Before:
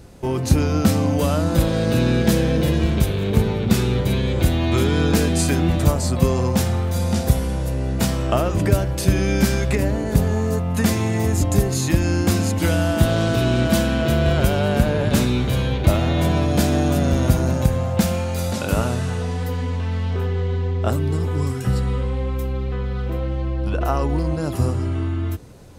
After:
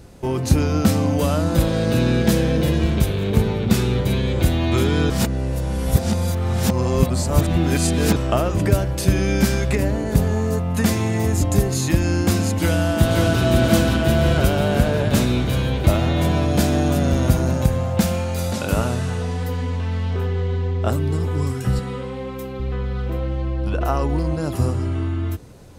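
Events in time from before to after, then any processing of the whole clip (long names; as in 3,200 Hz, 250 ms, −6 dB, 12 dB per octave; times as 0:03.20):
0:05.10–0:08.16: reverse
0:12.55–0:13.43: delay throw 530 ms, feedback 65%, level −3 dB
0:21.79–0:22.60: high-pass filter 160 Hz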